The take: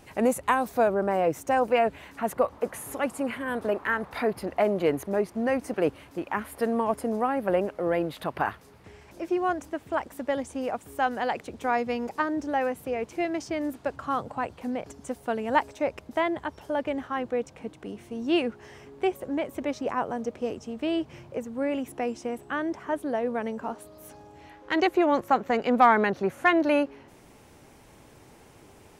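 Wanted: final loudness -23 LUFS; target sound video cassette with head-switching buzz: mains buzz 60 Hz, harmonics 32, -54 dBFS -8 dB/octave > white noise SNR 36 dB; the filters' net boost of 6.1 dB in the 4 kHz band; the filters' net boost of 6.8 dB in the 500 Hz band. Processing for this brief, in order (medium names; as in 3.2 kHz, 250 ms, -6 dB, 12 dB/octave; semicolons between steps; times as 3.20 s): peaking EQ 500 Hz +8 dB; peaking EQ 4 kHz +9 dB; mains buzz 60 Hz, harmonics 32, -54 dBFS -8 dB/octave; white noise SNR 36 dB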